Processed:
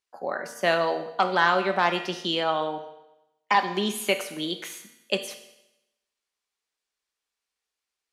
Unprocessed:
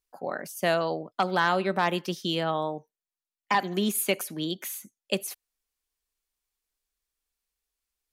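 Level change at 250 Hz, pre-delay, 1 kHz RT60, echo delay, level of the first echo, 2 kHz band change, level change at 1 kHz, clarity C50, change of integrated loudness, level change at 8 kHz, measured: -1.0 dB, 4 ms, 0.90 s, no echo, no echo, +4.0 dB, +3.5 dB, 10.0 dB, +2.5 dB, -3.0 dB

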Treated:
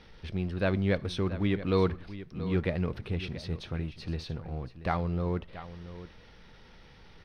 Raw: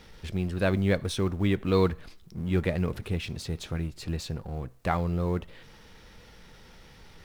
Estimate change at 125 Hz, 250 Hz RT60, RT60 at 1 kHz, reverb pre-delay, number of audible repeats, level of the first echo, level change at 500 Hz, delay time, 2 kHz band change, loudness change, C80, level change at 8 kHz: -2.5 dB, no reverb, no reverb, no reverb, 1, -14.0 dB, -2.5 dB, 681 ms, -2.5 dB, -2.5 dB, no reverb, under -10 dB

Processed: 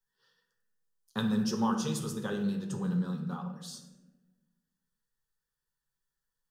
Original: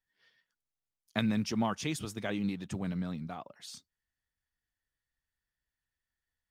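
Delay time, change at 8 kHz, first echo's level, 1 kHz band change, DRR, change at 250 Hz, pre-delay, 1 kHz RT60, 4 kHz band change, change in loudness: no echo, +2.5 dB, no echo, +2.0 dB, 1.5 dB, +2.5 dB, 7 ms, 0.95 s, -0.5 dB, +2.0 dB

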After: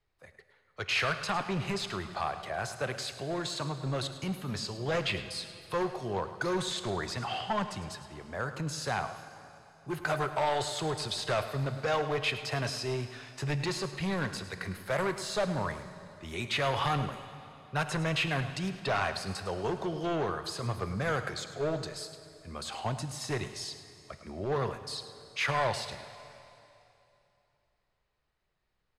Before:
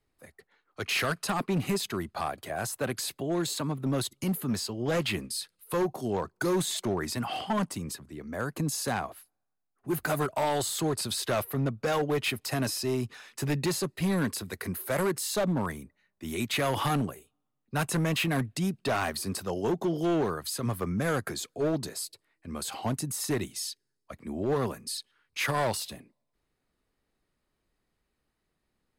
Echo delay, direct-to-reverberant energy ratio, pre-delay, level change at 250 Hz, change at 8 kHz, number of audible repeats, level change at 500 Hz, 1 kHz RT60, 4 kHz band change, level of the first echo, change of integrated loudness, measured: 106 ms, 9.0 dB, 6 ms, -6.5 dB, -7.5 dB, 1, -2.5 dB, 2.9 s, -0.5 dB, -14.0 dB, -2.5 dB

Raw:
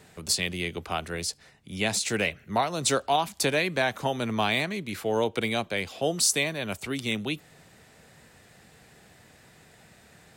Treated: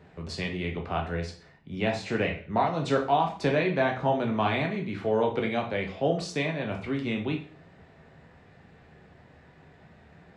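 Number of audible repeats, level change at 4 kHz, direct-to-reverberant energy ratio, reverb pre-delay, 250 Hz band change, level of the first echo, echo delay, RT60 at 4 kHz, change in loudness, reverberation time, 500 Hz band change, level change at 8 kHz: no echo, -9.0 dB, 1.0 dB, 6 ms, +2.0 dB, no echo, no echo, 0.40 s, -1.0 dB, 0.40 s, +1.5 dB, -20.5 dB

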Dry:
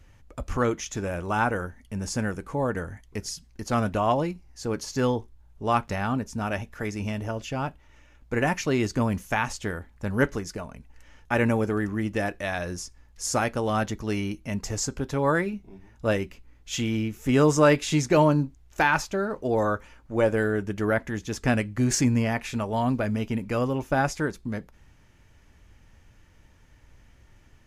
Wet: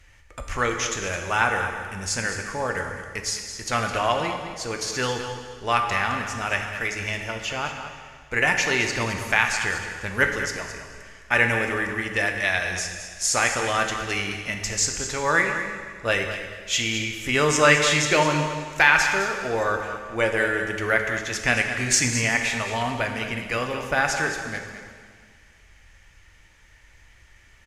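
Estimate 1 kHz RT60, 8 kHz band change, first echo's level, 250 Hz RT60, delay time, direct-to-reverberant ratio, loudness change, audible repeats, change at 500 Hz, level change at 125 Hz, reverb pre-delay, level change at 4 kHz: 1.9 s, +8.0 dB, -10.5 dB, 1.9 s, 213 ms, 3.5 dB, +3.5 dB, 1, -0.5 dB, -4.0 dB, 6 ms, +10.0 dB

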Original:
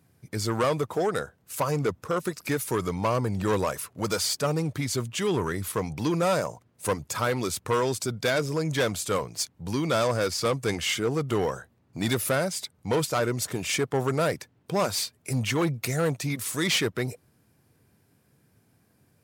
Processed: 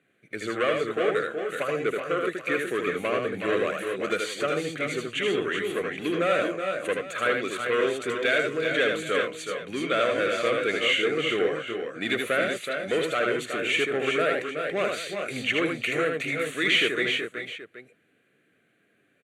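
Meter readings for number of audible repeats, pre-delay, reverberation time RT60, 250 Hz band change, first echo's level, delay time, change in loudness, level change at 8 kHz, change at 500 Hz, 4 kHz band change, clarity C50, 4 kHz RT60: 3, no reverb, no reverb, -2.0 dB, -4.0 dB, 78 ms, +1.0 dB, -10.0 dB, +2.0 dB, +2.0 dB, no reverb, no reverb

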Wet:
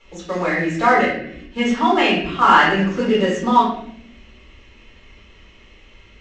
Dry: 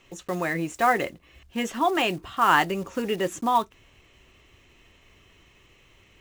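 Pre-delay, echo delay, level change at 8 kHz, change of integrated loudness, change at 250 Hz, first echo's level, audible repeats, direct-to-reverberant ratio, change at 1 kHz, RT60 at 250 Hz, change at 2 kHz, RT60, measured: 3 ms, no echo, 0.0 dB, +8.0 dB, +10.0 dB, no echo, no echo, -8.5 dB, +7.5 dB, 1.2 s, +8.0 dB, 0.70 s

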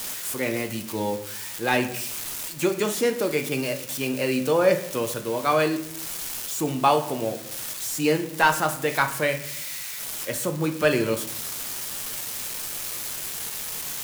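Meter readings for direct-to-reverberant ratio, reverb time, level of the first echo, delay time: 6.0 dB, 0.65 s, no echo, no echo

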